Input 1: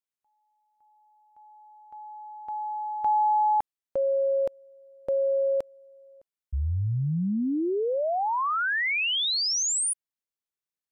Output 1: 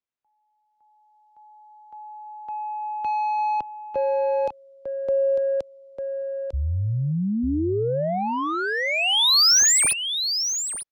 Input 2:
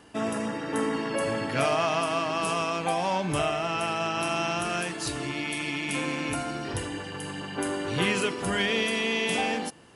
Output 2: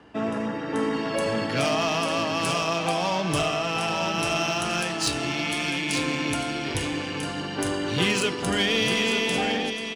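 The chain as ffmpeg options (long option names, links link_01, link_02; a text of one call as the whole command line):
ffmpeg -i in.wav -filter_complex "[0:a]acrossover=split=100|530|3700[link_01][link_02][link_03][link_04];[link_03]asoftclip=type=tanh:threshold=-27dB[link_05];[link_04]dynaudnorm=framelen=250:gausssize=7:maxgain=12dB[link_06];[link_01][link_02][link_05][link_06]amix=inputs=4:normalize=0,aecho=1:1:899:0.473,adynamicsmooth=sensitivity=1.5:basefreq=4500,highshelf=frequency=5500:gain=-4.5,volume=2.5dB" out.wav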